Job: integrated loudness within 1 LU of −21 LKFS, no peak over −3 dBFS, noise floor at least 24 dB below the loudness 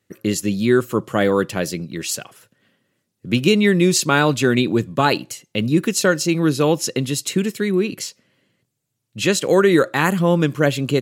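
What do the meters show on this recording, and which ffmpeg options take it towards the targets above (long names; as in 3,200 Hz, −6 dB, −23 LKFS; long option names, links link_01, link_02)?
integrated loudness −18.5 LKFS; sample peak −1.5 dBFS; target loudness −21.0 LKFS
→ -af "volume=-2.5dB"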